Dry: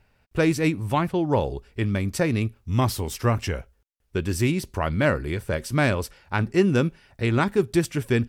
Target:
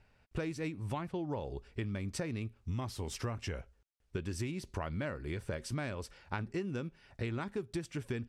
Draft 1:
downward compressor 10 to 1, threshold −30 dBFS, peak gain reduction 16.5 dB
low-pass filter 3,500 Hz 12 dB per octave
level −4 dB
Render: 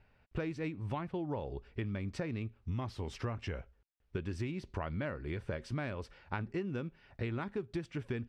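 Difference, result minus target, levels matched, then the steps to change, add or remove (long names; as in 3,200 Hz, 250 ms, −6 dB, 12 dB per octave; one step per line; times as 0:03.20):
8,000 Hz band −11.5 dB
change: low-pass filter 8,600 Hz 12 dB per octave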